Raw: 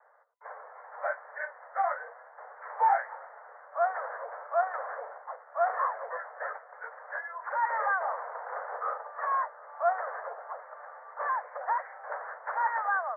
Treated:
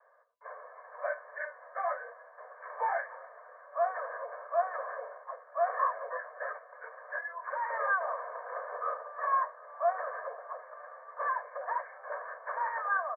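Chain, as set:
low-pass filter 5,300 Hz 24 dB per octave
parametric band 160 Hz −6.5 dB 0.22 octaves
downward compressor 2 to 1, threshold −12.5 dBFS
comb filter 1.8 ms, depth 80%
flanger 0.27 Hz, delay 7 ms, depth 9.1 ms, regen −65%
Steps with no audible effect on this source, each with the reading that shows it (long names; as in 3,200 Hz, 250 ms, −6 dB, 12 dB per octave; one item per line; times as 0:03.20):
low-pass filter 5,300 Hz: nothing at its input above 2,000 Hz
parametric band 160 Hz: nothing at its input below 400 Hz
downward compressor, threshold −12.5 dBFS: peak of its input −14.0 dBFS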